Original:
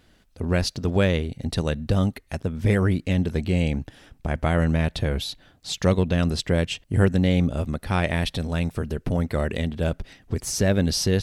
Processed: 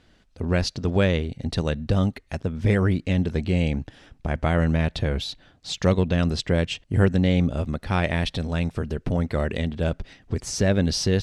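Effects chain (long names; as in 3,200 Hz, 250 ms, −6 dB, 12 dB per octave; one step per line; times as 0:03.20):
low-pass filter 7,100 Hz 12 dB per octave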